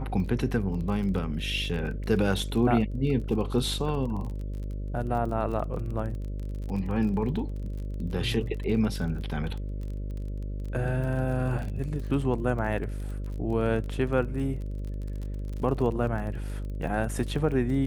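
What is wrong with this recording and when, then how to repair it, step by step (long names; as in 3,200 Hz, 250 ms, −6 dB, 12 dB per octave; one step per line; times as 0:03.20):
mains buzz 50 Hz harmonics 12 −33 dBFS
surface crackle 31 per second −35 dBFS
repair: click removal
hum removal 50 Hz, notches 12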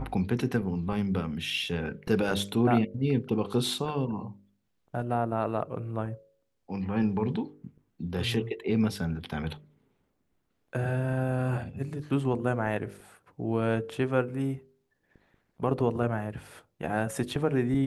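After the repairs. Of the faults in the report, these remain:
none of them is left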